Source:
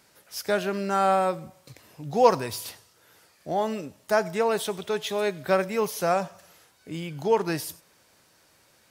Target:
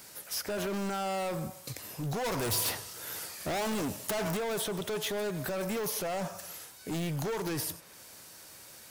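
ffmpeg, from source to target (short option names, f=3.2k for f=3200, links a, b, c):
-filter_complex "[0:a]acrossover=split=2000|4000[a][b][c];[a]acompressor=threshold=-25dB:ratio=4[d];[b]acompressor=threshold=-54dB:ratio=4[e];[c]acompressor=threshold=-51dB:ratio=4[f];[d][e][f]amix=inputs=3:normalize=0,alimiter=level_in=2dB:limit=-24dB:level=0:latency=1:release=49,volume=-2dB,asettb=1/sr,asplit=3[g][h][i];[g]atrim=end=2.244[j];[h]atrim=start=2.24:end=4.37,asetpts=PTS-STARTPTS,afade=t=in:d=0.004:c=qsin,afade=t=out:st=2.126:d=0.004:c=qsin,acontrast=87[k];[i]atrim=start=4.366[l];[j][k]acrossfade=d=0.004:c1=hsin:c2=qsin[m];[m][l]acrossfade=d=0.004:c1=qsin:c2=hsin,asoftclip=type=hard:threshold=-36.5dB,highshelf=f=6.3k:g=11.5,volume=5.5dB"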